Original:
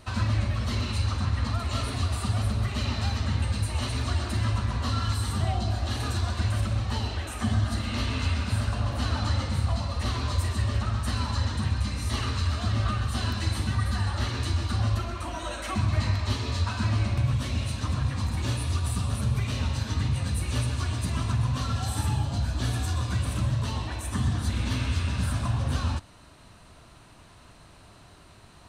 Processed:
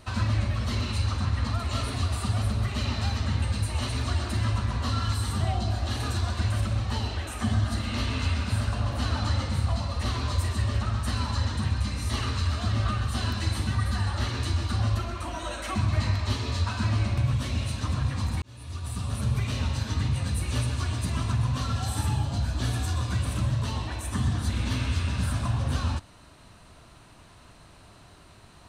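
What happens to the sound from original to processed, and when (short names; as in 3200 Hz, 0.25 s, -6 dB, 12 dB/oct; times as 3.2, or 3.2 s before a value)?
18.42–19.3 fade in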